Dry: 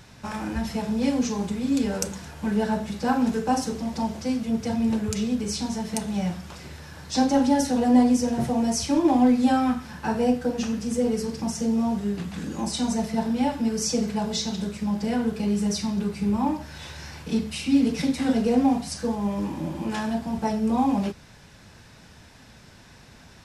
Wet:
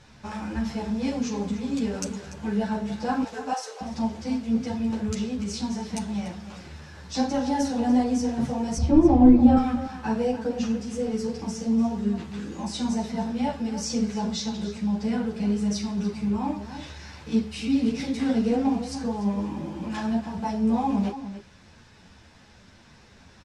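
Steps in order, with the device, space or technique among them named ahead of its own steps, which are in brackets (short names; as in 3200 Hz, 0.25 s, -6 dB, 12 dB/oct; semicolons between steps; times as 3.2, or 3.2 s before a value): 3.23–3.81 steep high-pass 490 Hz 36 dB/oct; 8.77–9.57 tilt -4.5 dB/oct; string-machine ensemble chorus (ensemble effect; LPF 7400 Hz 12 dB/oct); outdoor echo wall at 50 m, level -11 dB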